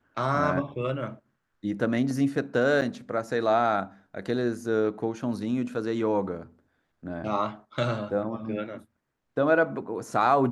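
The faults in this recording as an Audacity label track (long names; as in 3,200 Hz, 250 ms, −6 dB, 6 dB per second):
2.810000	2.820000	drop-out 7.6 ms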